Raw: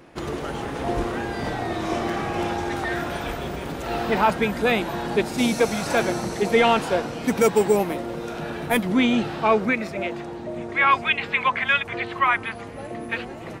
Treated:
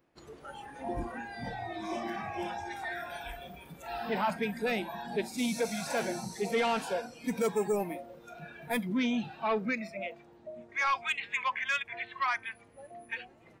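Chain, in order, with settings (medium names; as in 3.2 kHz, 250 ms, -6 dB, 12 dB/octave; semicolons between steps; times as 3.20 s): 5.23–7.23 s: peaking EQ 10 kHz +3 dB 1.6 oct; saturation -14.5 dBFS, distortion -15 dB; spectral noise reduction 15 dB; trim -8 dB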